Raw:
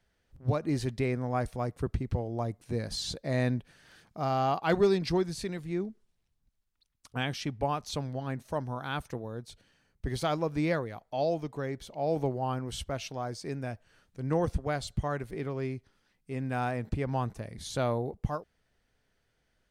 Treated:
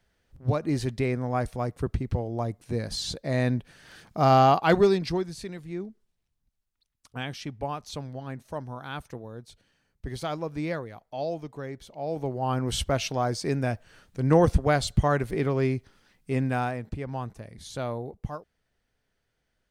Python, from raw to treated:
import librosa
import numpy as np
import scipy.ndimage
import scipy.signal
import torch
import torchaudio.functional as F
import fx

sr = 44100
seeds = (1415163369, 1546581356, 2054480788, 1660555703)

y = fx.gain(x, sr, db=fx.line((3.44, 3.0), (4.34, 11.0), (5.3, -2.0), (12.2, -2.0), (12.68, 9.0), (16.37, 9.0), (16.87, -2.5)))